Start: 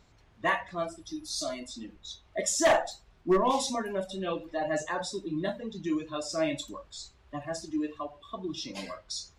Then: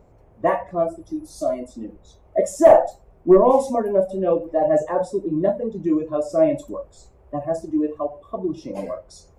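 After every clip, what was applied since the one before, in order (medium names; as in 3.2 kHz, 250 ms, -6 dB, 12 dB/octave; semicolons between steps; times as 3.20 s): FFT filter 280 Hz 0 dB, 530 Hz +8 dB, 1.6 kHz -12 dB, 2.3 kHz -13 dB, 3.8 kHz -25 dB, 12 kHz -5 dB; trim +8.5 dB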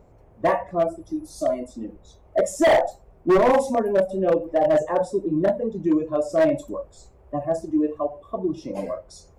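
overload inside the chain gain 13 dB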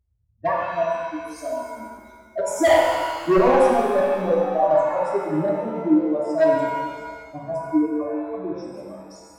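expander on every frequency bin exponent 2; pitch-shifted reverb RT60 1.6 s, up +7 st, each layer -8 dB, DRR -1.5 dB; trim +1 dB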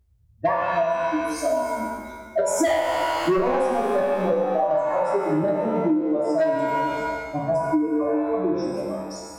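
spectral sustain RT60 0.33 s; compression 10:1, threshold -26 dBFS, peak gain reduction 16 dB; trim +7.5 dB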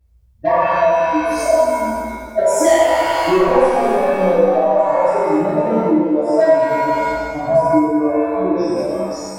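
reverberation RT60 1.2 s, pre-delay 4 ms, DRR -8.5 dB; trim -2 dB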